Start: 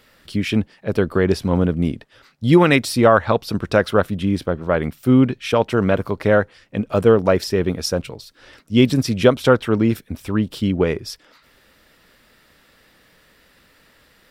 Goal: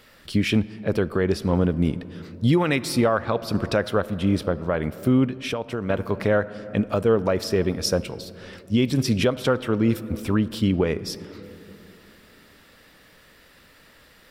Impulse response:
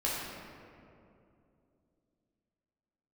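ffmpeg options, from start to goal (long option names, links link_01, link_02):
-filter_complex "[0:a]asplit=2[link_01][link_02];[1:a]atrim=start_sample=2205[link_03];[link_02][link_03]afir=irnorm=-1:irlink=0,volume=-23dB[link_04];[link_01][link_04]amix=inputs=2:normalize=0,alimiter=limit=-11.5dB:level=0:latency=1:release=442,asettb=1/sr,asplit=3[link_05][link_06][link_07];[link_05]atrim=end=5.254[link_08];[link_06]atrim=start=5.25:end=5.9,asetpts=PTS-STARTPTS,afade=type=in:duration=0.004:curve=qsin,afade=type=out:start_time=0.646:duration=0.004:curve=qsin,acompressor=threshold=-30dB:ratio=2[link_09];[link_07]atrim=start=5.896[link_10];[link_08][link_09]acrossfade=duration=0.004:curve1=hsin:curve2=qsin[link_11];[link_11][link_10]acrossfade=duration=0.004:curve1=qsin:curve2=hsin,volume=1dB"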